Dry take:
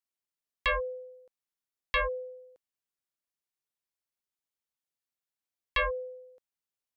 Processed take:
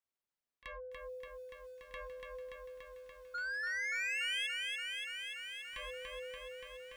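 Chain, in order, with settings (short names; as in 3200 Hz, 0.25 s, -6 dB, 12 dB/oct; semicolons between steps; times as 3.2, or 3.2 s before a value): high shelf 3800 Hz -9.5 dB; notches 60/120/180/240/300/360 Hz; limiter -30.5 dBFS, peak gain reduction 9 dB; compressor 5:1, threshold -48 dBFS, peak gain reduction 13 dB; pre-echo 30 ms -19 dB; painted sound rise, 3.34–4.47, 1400–3400 Hz -36 dBFS; soft clip -37.5 dBFS, distortion -15 dB; lo-fi delay 0.288 s, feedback 80%, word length 12-bit, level -3.5 dB; gain +1 dB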